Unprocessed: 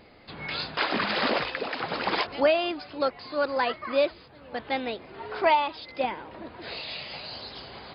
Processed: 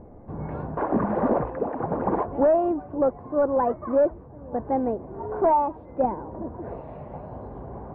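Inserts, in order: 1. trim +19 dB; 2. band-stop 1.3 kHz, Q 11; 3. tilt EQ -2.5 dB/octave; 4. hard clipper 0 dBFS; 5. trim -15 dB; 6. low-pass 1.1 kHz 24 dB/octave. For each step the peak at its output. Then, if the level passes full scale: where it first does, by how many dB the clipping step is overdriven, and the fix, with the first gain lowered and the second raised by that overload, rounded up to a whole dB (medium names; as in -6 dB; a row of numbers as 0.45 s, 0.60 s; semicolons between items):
+8.5 dBFS, +8.0 dBFS, +9.5 dBFS, 0.0 dBFS, -15.0 dBFS, -13.0 dBFS; step 1, 9.5 dB; step 1 +9 dB, step 5 -5 dB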